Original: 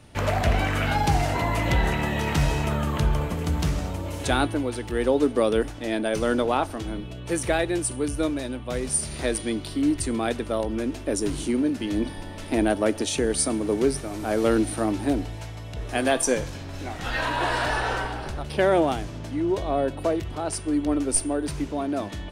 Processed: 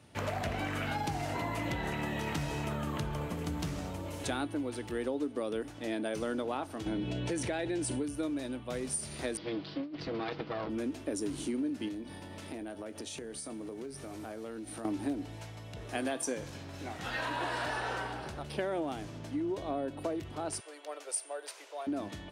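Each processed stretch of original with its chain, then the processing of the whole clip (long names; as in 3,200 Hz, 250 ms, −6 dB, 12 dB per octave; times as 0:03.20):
0:06.86–0:08.03: low-pass filter 7,200 Hz + notch filter 1,200 Hz, Q 5.5 + envelope flattener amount 70%
0:09.37–0:10.70: lower of the sound and its delayed copy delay 6.2 ms + elliptic low-pass filter 4,900 Hz, stop band 60 dB + compressor whose output falls as the input rises −28 dBFS, ratio −0.5
0:11.88–0:14.85: floating-point word with a short mantissa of 6 bits + double-tracking delay 22 ms −13 dB + downward compressor 10 to 1, threshold −31 dBFS
0:20.60–0:21.87: Butterworth high-pass 500 Hz + parametric band 920 Hz −3 dB 1.6 octaves
whole clip: high-pass filter 95 Hz 12 dB per octave; dynamic equaliser 290 Hz, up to +5 dB, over −37 dBFS, Q 4.3; downward compressor 5 to 1, threshold −24 dBFS; level −7 dB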